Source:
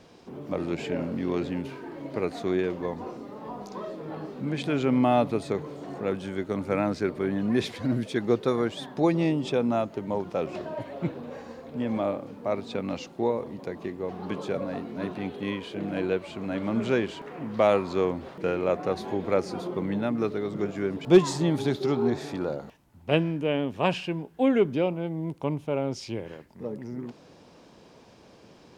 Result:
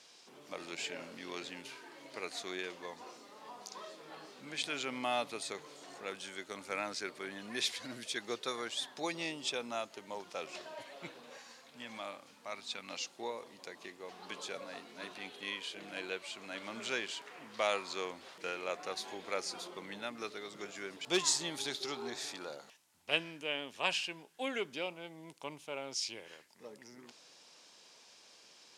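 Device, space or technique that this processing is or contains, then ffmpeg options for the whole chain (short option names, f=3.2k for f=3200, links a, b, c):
piezo pickup straight into a mixer: -filter_complex "[0:a]lowpass=8.4k,aderivative,asettb=1/sr,asplit=3[a][b][c];[a]atrim=end=11.384[d];[b]atrim=start=11.38:end=12.9,asetpts=PTS-STARTPTS,afade=t=in:d=0.004:c=qsin,afade=t=out:st=1.516:d=0.004:c=qsin,equalizer=f=450:t=o:w=1.2:g=-7.5[e];[c]atrim=start=12.896[f];[d][e]acrossfade=d=0.004:c1=hsin:c2=qsin[g];[g][f]acrossfade=d=0.004:c1=qsin:c2=hsin,volume=8dB"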